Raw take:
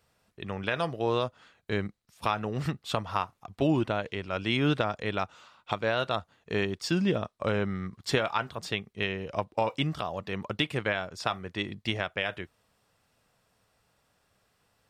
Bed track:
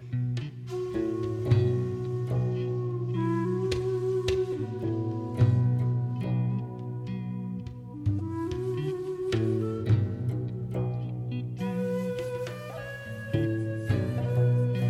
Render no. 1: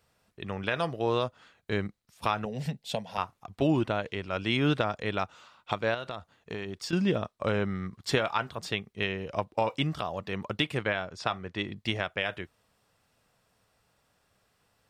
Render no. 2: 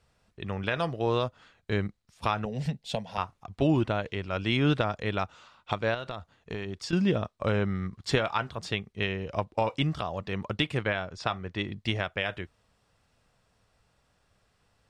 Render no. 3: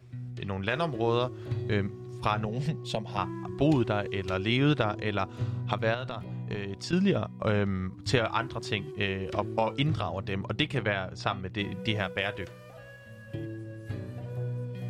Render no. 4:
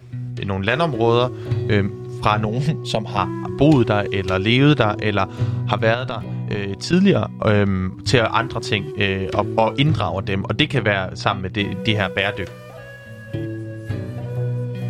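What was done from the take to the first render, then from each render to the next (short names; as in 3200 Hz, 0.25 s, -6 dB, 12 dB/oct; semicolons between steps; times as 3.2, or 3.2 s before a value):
2.45–3.18 fixed phaser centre 330 Hz, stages 6; 5.94–6.93 compressor, threshold -32 dBFS; 10.83–11.76 air absorption 50 m
LPF 8900 Hz 12 dB/oct; low shelf 77 Hz +12 dB
add bed track -10 dB
gain +10.5 dB; limiter -1 dBFS, peak gain reduction 1 dB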